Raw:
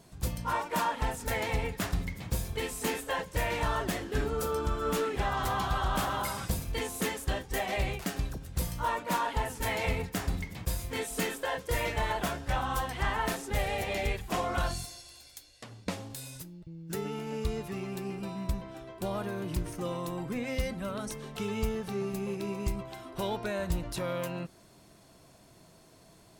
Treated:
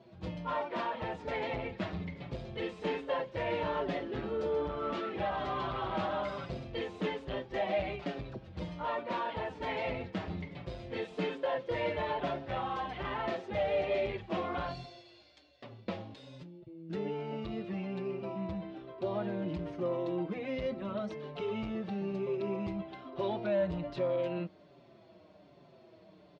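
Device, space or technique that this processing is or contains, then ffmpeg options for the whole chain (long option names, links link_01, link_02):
barber-pole flanger into a guitar amplifier: -filter_complex "[0:a]asplit=2[link_01][link_02];[link_02]adelay=5.6,afreqshift=-1.2[link_03];[link_01][link_03]amix=inputs=2:normalize=1,asoftclip=type=tanh:threshold=-28.5dB,highpass=100,equalizer=frequency=190:width_type=q:width=4:gain=3,equalizer=frequency=350:width_type=q:width=4:gain=7,equalizer=frequency=590:width_type=q:width=4:gain=9,equalizer=frequency=1600:width_type=q:width=4:gain=-3,lowpass=frequency=3800:width=0.5412,lowpass=frequency=3800:width=1.3066"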